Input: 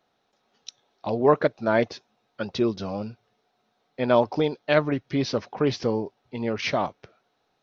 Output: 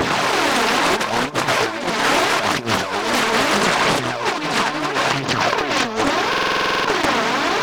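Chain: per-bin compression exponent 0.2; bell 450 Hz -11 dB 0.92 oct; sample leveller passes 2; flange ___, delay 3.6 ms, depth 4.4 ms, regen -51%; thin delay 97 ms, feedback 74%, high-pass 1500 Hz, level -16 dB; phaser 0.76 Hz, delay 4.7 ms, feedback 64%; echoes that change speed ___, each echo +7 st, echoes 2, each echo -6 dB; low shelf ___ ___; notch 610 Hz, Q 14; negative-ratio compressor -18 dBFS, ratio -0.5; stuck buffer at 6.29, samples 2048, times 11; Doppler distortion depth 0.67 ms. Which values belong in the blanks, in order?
1.6 Hz, 0.105 s, 110 Hz, -8.5 dB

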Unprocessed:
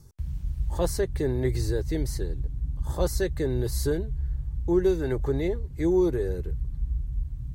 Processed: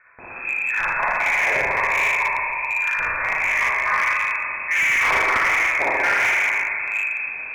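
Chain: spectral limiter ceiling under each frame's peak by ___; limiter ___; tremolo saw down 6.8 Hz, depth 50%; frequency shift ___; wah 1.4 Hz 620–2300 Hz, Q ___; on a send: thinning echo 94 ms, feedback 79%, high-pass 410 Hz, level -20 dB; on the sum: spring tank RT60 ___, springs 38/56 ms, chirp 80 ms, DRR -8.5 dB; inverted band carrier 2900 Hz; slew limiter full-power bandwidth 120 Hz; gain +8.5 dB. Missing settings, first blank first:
29 dB, -14.5 dBFS, +240 Hz, 2.3, 2.5 s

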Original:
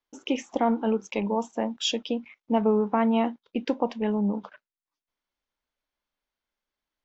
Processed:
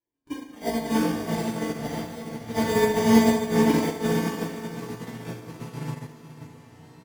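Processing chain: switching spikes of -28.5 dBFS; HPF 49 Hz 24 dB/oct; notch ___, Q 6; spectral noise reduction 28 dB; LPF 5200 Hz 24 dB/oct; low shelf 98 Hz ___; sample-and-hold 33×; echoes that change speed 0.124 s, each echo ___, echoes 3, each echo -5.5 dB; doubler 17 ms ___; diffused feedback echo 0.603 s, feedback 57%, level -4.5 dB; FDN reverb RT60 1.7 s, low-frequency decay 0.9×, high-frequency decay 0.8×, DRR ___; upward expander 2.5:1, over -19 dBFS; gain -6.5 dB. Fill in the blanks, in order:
520 Hz, +11.5 dB, -5 st, -7 dB, -9.5 dB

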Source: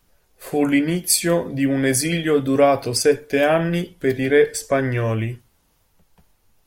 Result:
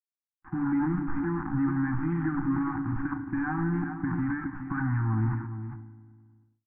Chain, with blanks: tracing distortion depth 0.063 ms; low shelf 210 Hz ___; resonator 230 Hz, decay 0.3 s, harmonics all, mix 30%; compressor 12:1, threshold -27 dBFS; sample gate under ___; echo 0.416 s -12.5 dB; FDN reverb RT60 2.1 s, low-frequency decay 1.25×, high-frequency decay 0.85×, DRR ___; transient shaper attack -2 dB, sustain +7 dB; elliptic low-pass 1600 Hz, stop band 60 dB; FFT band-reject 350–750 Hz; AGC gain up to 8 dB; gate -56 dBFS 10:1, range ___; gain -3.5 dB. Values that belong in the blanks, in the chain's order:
+7 dB, -33.5 dBFS, 13 dB, -28 dB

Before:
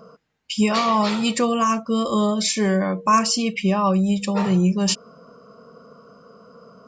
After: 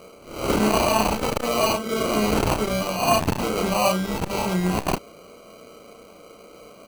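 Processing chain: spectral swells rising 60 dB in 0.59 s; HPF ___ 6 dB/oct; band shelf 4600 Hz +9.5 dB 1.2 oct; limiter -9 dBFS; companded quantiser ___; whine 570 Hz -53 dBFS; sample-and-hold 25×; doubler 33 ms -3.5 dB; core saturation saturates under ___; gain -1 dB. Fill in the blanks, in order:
410 Hz, 8-bit, 290 Hz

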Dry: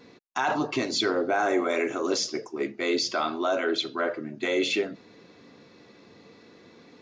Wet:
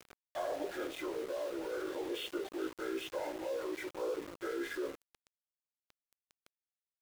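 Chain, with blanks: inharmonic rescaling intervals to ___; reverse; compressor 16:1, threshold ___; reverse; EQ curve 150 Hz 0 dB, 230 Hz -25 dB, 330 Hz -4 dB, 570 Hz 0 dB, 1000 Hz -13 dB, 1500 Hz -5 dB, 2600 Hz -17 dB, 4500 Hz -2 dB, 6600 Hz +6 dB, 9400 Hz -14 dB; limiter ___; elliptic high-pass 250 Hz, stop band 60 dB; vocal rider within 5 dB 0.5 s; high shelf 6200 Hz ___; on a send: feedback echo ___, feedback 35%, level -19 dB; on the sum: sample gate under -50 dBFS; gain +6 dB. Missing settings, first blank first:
80%, -34 dBFS, -35 dBFS, +12 dB, 0.423 s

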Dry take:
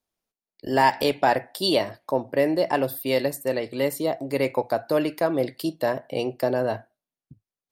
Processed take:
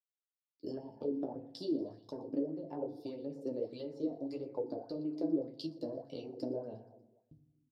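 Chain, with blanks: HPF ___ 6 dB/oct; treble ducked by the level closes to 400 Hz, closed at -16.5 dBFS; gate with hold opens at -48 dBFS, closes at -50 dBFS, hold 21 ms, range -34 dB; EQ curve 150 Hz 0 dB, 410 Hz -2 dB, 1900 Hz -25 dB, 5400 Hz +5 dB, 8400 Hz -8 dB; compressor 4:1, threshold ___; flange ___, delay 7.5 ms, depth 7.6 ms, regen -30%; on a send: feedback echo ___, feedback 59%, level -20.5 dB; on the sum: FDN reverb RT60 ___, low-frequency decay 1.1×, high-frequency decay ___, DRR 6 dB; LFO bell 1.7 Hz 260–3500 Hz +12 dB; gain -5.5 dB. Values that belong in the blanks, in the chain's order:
110 Hz, -32 dBFS, 2 Hz, 0.119 s, 0.8 s, 0.4×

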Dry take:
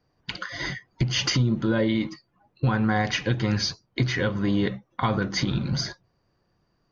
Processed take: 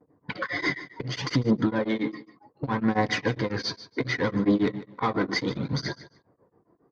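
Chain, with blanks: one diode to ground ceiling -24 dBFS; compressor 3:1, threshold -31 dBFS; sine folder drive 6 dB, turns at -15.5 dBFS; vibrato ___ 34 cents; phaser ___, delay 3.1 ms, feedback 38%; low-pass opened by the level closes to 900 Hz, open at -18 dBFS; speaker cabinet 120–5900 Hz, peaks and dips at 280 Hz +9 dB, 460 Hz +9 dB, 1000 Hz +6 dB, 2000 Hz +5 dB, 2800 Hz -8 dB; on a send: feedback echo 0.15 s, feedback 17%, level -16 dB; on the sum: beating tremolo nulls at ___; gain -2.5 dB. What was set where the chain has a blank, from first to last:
0.47 Hz, 0.67 Hz, 7.3 Hz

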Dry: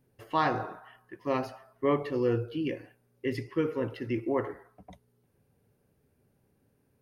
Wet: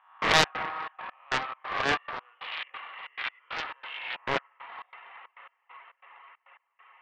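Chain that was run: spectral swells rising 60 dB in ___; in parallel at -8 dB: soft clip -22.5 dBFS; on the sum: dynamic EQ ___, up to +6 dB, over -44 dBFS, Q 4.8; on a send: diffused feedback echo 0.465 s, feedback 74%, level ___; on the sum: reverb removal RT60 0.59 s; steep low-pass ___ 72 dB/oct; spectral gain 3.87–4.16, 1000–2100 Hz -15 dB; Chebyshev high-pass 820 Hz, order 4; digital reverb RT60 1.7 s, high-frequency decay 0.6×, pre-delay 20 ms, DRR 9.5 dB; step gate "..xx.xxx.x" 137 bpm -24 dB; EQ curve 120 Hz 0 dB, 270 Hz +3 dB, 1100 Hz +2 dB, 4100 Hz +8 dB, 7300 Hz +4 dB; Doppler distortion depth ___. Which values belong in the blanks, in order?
1.03 s, 1200 Hz, -15 dB, 3100 Hz, 0.77 ms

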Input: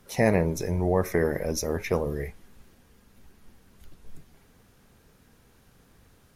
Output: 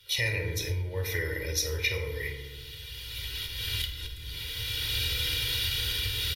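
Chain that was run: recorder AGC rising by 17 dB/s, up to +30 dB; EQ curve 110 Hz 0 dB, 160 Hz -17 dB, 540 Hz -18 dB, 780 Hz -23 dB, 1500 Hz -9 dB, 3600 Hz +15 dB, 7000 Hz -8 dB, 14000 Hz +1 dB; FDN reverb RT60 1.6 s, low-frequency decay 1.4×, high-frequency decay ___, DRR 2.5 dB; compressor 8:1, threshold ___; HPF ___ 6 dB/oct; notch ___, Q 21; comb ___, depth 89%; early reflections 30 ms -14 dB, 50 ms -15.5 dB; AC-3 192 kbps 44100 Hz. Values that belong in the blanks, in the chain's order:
0.3×, -25 dBFS, 160 Hz, 4000 Hz, 2.1 ms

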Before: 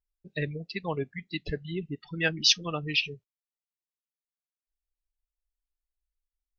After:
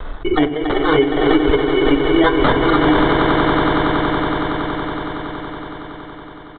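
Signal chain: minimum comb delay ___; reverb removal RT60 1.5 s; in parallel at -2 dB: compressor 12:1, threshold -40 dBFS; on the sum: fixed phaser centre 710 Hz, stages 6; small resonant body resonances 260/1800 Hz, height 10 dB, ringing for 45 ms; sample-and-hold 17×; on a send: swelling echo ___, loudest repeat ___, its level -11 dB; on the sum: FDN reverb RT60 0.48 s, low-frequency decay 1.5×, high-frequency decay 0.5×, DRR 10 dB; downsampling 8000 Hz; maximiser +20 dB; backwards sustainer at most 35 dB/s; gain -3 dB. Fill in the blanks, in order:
2.6 ms, 93 ms, 8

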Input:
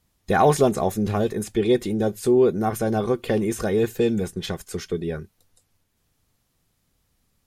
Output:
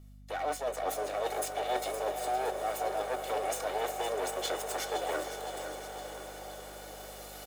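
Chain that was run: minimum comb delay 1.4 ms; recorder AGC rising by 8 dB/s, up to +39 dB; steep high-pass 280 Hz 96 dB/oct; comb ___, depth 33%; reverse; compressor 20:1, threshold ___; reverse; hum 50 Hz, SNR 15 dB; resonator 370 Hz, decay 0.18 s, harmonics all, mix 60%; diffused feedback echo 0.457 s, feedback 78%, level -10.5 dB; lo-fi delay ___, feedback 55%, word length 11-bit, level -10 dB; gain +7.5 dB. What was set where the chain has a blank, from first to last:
1.7 ms, -31 dBFS, 0.515 s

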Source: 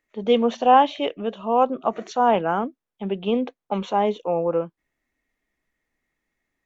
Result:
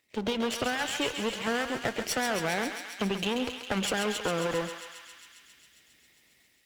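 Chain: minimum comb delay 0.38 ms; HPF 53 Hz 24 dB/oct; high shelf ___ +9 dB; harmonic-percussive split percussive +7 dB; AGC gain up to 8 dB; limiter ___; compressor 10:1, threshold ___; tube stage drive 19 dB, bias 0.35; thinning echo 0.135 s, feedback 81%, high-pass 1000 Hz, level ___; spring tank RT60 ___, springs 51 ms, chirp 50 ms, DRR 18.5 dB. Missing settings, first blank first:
2100 Hz, -11 dBFS, -24 dBFS, -6 dB, 1.2 s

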